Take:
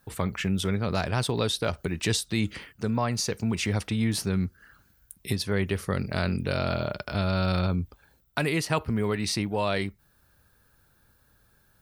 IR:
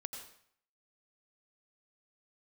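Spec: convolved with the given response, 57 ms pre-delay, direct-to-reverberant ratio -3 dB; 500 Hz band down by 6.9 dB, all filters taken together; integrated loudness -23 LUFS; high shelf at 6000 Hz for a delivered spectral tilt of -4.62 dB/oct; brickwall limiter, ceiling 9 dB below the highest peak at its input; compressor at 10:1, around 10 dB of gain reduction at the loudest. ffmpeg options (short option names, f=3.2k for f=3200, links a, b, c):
-filter_complex "[0:a]equalizer=f=500:t=o:g=-9,highshelf=f=6k:g=-4,acompressor=threshold=-33dB:ratio=10,alimiter=level_in=3dB:limit=-24dB:level=0:latency=1,volume=-3dB,asplit=2[a][b];[1:a]atrim=start_sample=2205,adelay=57[c];[b][c]afir=irnorm=-1:irlink=0,volume=5dB[d];[a][d]amix=inputs=2:normalize=0,volume=11.5dB"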